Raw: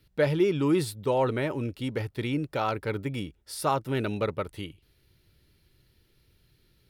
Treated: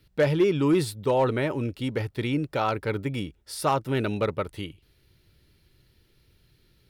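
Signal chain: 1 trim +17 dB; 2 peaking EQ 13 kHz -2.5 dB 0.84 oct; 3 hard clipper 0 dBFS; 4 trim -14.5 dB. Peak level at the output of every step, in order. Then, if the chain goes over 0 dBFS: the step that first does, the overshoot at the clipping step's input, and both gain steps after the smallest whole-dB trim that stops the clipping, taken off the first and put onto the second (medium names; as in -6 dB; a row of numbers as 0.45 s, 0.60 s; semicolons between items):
+4.0 dBFS, +4.0 dBFS, 0.0 dBFS, -14.5 dBFS; step 1, 4.0 dB; step 1 +13 dB, step 4 -10.5 dB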